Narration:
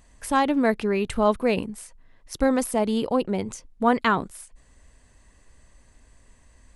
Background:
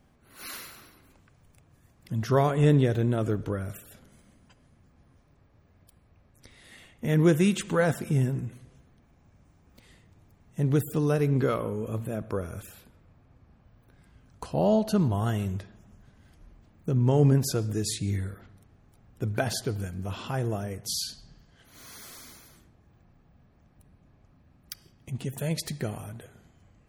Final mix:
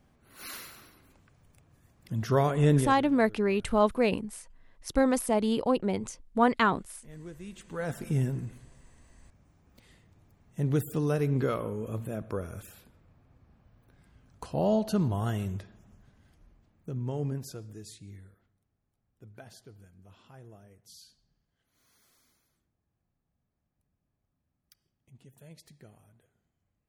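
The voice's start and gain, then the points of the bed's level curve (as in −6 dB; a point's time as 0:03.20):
2.55 s, −3.0 dB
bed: 0:02.77 −2 dB
0:03.07 −24 dB
0:07.37 −24 dB
0:08.07 −3 dB
0:15.93 −3 dB
0:18.58 −21.5 dB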